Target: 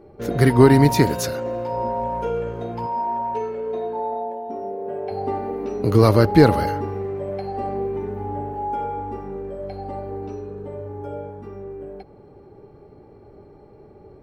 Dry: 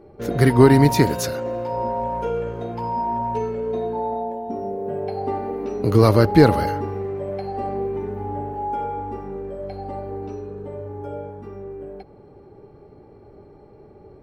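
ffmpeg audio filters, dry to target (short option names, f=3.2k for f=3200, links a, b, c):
-filter_complex "[0:a]asettb=1/sr,asplit=3[a][b][c];[a]atrim=end=2.864[d];[b]atrim=start=2.86:end=5.11,asetpts=PTS-STARTPTS,afade=t=in:d=0.004:c=qsin,afade=t=out:st=2.246:d=0.004:c=qsin,bass=f=250:g=-12,treble=f=4k:g=-5[e];[c]atrim=start=5.106[f];[d][e]acrossfade=d=0.004:c1=hsin:c2=qsin[g];[g][f]acrossfade=d=0.004:c1=qsin:c2=hsin"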